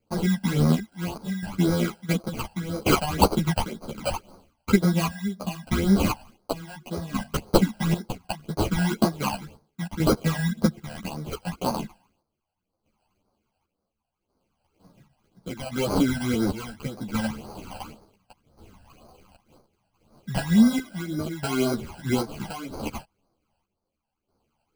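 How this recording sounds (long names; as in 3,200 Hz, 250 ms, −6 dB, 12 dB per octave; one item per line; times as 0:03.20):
aliases and images of a low sample rate 1,800 Hz, jitter 0%
phaser sweep stages 12, 1.9 Hz, lowest notch 360–2,800 Hz
chopped level 0.7 Hz, depth 65%, duty 55%
a shimmering, thickened sound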